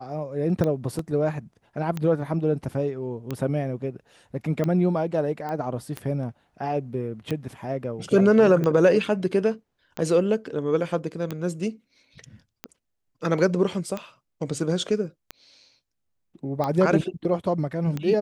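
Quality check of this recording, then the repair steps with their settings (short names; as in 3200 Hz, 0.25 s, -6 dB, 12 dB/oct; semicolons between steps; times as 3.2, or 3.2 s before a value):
tick 45 rpm -15 dBFS
0.99 gap 2.9 ms
5.49 pop -21 dBFS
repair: de-click; interpolate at 0.99, 2.9 ms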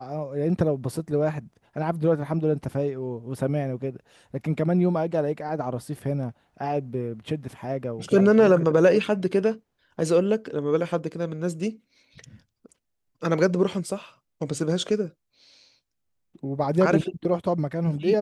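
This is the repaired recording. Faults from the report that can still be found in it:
none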